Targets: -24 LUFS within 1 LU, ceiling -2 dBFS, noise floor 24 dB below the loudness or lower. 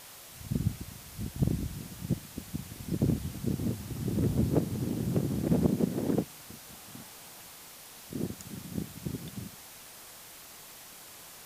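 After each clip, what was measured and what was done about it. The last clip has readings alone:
noise floor -49 dBFS; noise floor target -57 dBFS; loudness -33.0 LUFS; peak level -13.0 dBFS; loudness target -24.0 LUFS
-> noise reduction 8 dB, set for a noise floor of -49 dBFS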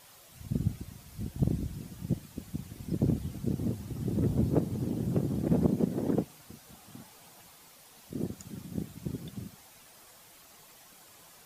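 noise floor -56 dBFS; noise floor target -57 dBFS
-> noise reduction 6 dB, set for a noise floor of -56 dBFS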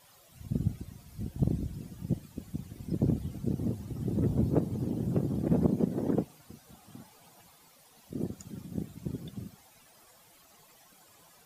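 noise floor -60 dBFS; loudness -33.0 LUFS; peak level -13.0 dBFS; loudness target -24.0 LUFS
-> trim +9 dB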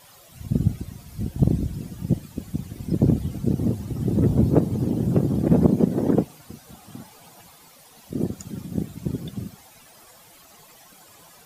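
loudness -24.0 LUFS; peak level -4.0 dBFS; noise floor -51 dBFS

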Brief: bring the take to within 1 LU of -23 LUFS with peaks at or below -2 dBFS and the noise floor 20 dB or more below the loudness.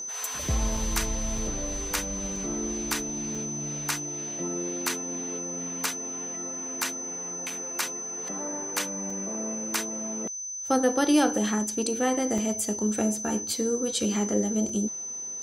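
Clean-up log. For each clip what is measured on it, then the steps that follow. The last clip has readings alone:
dropouts 8; longest dropout 3.3 ms; steady tone 6.1 kHz; tone level -33 dBFS; loudness -28.5 LUFS; peak level -10.5 dBFS; loudness target -23.0 LUFS
-> interpolate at 0.77/1.38/2.36/3.35/7.50/9.10/12.38/14.69 s, 3.3 ms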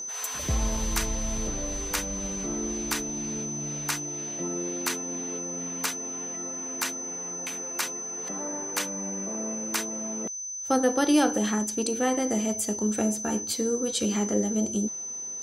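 dropouts 0; steady tone 6.1 kHz; tone level -33 dBFS
-> band-stop 6.1 kHz, Q 30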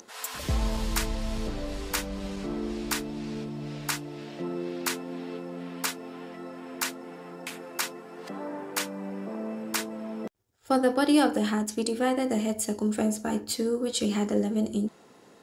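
steady tone not found; loudness -30.0 LUFS; peak level -10.5 dBFS; loudness target -23.0 LUFS
-> trim +7 dB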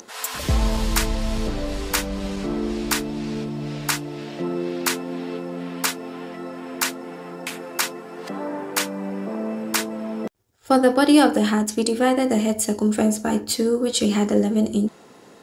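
loudness -23.0 LUFS; peak level -3.5 dBFS; noise floor -47 dBFS

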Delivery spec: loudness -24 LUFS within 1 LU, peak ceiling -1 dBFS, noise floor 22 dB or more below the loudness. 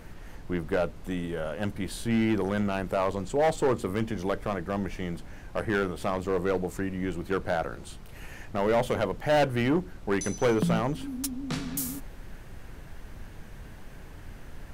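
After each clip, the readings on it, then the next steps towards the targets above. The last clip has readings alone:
clipped samples 1.4%; clipping level -19.0 dBFS; noise floor -45 dBFS; noise floor target -51 dBFS; loudness -29.0 LUFS; peak level -19.0 dBFS; loudness target -24.0 LUFS
-> clip repair -19 dBFS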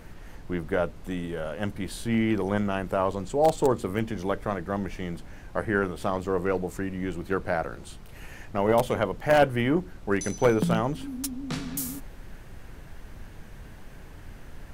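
clipped samples 0.0%; noise floor -45 dBFS; noise floor target -50 dBFS
-> noise print and reduce 6 dB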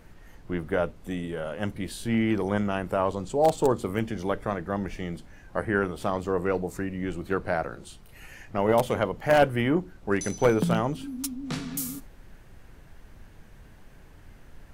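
noise floor -51 dBFS; loudness -27.5 LUFS; peak level -10.0 dBFS; loudness target -24.0 LUFS
-> trim +3.5 dB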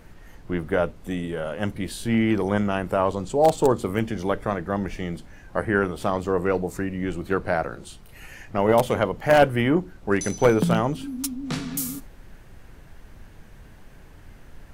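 loudness -24.0 LUFS; peak level -6.5 dBFS; noise floor -47 dBFS

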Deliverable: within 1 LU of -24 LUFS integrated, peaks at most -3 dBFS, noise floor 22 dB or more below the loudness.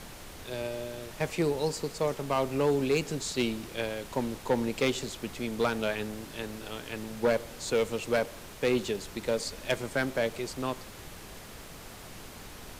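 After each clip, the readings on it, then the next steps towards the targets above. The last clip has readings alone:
clipped samples 0.7%; clipping level -19.5 dBFS; noise floor -46 dBFS; noise floor target -54 dBFS; loudness -31.5 LUFS; peak level -19.5 dBFS; loudness target -24.0 LUFS
-> clip repair -19.5 dBFS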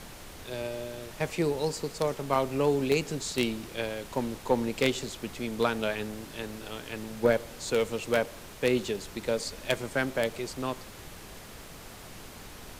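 clipped samples 0.0%; noise floor -46 dBFS; noise floor target -53 dBFS
-> noise print and reduce 7 dB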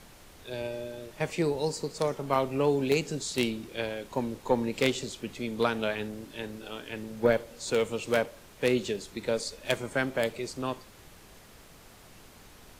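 noise floor -53 dBFS; loudness -30.5 LUFS; peak level -10.5 dBFS; loudness target -24.0 LUFS
-> trim +6.5 dB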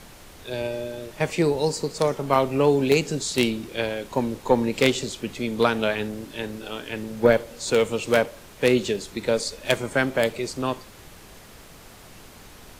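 loudness -24.0 LUFS; peak level -4.0 dBFS; noise floor -47 dBFS

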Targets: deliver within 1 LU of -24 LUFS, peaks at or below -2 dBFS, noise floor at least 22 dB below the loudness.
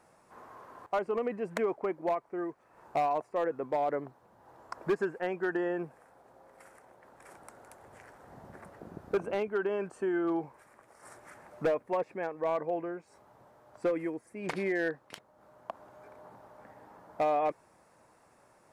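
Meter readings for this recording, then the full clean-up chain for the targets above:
clipped samples 0.7%; clipping level -23.0 dBFS; loudness -33.0 LUFS; peak level -23.0 dBFS; loudness target -24.0 LUFS
-> clip repair -23 dBFS; trim +9 dB

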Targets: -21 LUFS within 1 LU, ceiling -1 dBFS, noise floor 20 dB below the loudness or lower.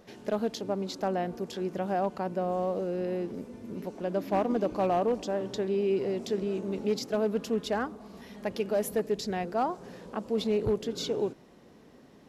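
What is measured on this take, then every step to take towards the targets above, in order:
clipped samples 0.4%; clipping level -20.0 dBFS; loudness -31.0 LUFS; peak level -20.0 dBFS; loudness target -21.0 LUFS
-> clip repair -20 dBFS; trim +10 dB

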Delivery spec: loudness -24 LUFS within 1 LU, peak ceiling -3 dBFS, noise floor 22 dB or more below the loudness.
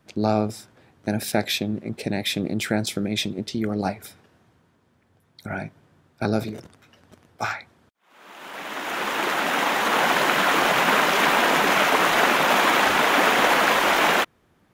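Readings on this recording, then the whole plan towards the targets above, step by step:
loudness -21.0 LUFS; peak level -4.5 dBFS; loudness target -24.0 LUFS
-> trim -3 dB

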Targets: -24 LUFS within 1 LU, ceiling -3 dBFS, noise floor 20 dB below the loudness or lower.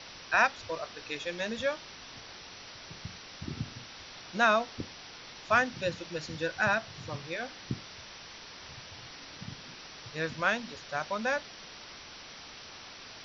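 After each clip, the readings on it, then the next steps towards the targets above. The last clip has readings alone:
noise floor -48 dBFS; noise floor target -52 dBFS; loudness -32.0 LUFS; peak level -11.0 dBFS; loudness target -24.0 LUFS
-> noise reduction 6 dB, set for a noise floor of -48 dBFS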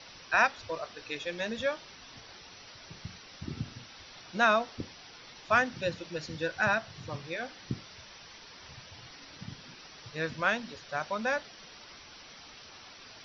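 noise floor -51 dBFS; noise floor target -52 dBFS
-> noise reduction 6 dB, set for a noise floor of -51 dBFS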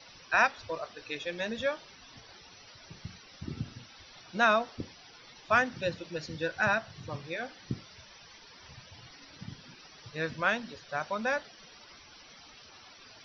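noise floor -54 dBFS; loudness -31.5 LUFS; peak level -11.0 dBFS; loudness target -24.0 LUFS
-> trim +7.5 dB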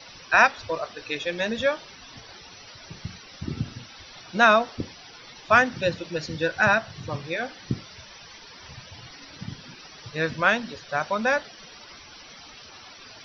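loudness -24.0 LUFS; peak level -3.5 dBFS; noise floor -47 dBFS

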